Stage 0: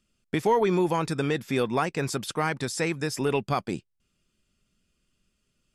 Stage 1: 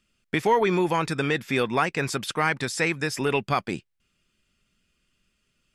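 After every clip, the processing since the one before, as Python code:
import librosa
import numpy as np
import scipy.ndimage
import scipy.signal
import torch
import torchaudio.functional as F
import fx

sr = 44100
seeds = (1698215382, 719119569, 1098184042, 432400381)

y = fx.peak_eq(x, sr, hz=2100.0, db=7.0, octaves=1.8)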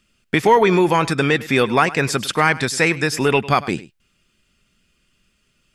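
y = x + 10.0 ** (-18.0 / 20.0) * np.pad(x, (int(102 * sr / 1000.0), 0))[:len(x)]
y = y * librosa.db_to_amplitude(7.5)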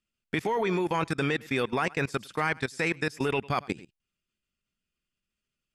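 y = fx.level_steps(x, sr, step_db=20)
y = y * librosa.db_to_amplitude(-6.5)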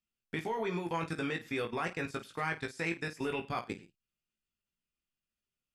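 y = fx.room_early_taps(x, sr, ms=(18, 51), db=(-5.0, -13.0))
y = y * librosa.db_to_amplitude(-8.5)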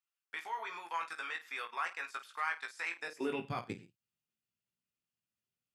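y = fx.filter_sweep_highpass(x, sr, from_hz=1100.0, to_hz=110.0, start_s=2.93, end_s=3.51, q=1.8)
y = y * librosa.db_to_amplitude(-3.5)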